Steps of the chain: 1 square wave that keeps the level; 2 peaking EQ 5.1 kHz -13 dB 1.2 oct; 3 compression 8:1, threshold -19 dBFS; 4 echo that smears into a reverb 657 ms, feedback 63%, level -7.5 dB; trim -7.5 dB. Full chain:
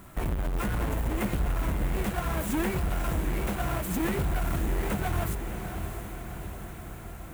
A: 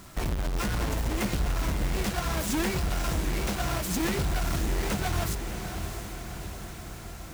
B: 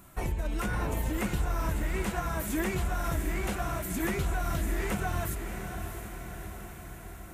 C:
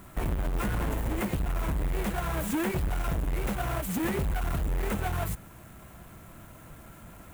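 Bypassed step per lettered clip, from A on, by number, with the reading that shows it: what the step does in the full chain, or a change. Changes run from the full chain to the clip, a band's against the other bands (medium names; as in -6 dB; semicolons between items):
2, 4 kHz band +7.5 dB; 1, distortion -6 dB; 4, echo-to-direct -5.5 dB to none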